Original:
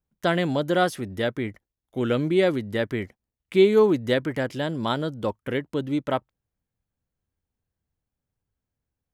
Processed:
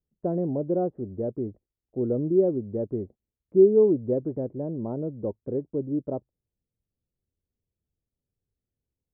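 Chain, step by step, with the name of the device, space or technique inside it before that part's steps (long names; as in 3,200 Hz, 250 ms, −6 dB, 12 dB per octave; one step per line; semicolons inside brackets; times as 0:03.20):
under water (low-pass filter 610 Hz 24 dB per octave; parametric band 390 Hz +4 dB 0.4 octaves)
level −3 dB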